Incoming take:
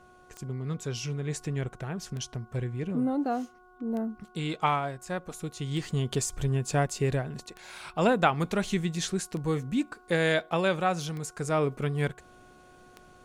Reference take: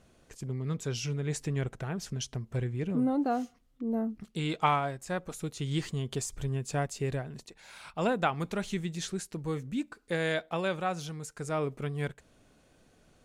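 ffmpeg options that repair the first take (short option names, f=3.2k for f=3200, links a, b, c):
-af "adeclick=t=4,bandreject=f=364.6:t=h:w=4,bandreject=f=729.2:t=h:w=4,bandreject=f=1.0938k:t=h:w=4,bandreject=f=1.4584k:t=h:w=4,asetnsamples=n=441:p=0,asendcmd='5.9 volume volume -5dB',volume=0dB"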